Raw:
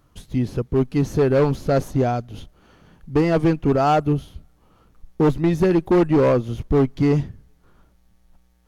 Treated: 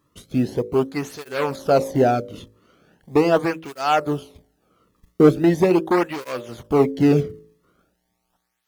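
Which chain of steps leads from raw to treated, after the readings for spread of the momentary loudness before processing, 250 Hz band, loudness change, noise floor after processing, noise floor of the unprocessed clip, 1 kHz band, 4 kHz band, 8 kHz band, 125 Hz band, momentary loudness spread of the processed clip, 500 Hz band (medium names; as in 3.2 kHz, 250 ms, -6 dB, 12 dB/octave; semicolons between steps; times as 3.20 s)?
7 LU, -0.5 dB, -0.5 dB, -73 dBFS, -59 dBFS, +1.0 dB, +3.5 dB, no reading, -5.0 dB, 13 LU, +0.5 dB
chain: companding laws mixed up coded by A; de-hum 53.91 Hz, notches 11; cancelling through-zero flanger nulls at 0.4 Hz, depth 1.4 ms; trim +6.5 dB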